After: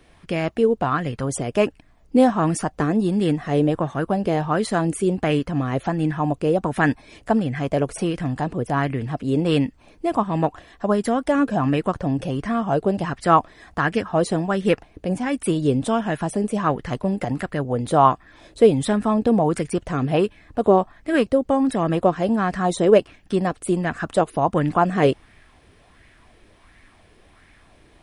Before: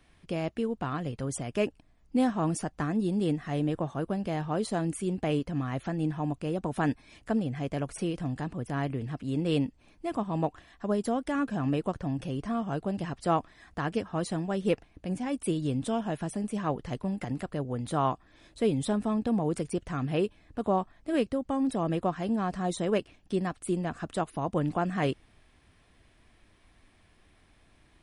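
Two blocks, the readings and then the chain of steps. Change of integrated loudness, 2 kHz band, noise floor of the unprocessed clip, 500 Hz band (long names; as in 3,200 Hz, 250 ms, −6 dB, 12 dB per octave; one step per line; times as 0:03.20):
+9.5 dB, +11.5 dB, −63 dBFS, +11.0 dB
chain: auto-filter bell 1.4 Hz 410–2,000 Hz +9 dB
level +7.5 dB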